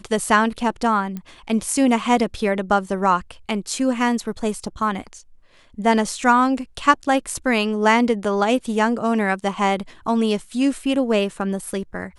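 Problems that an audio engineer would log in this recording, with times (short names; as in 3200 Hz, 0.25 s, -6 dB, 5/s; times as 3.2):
1.17 pop -18 dBFS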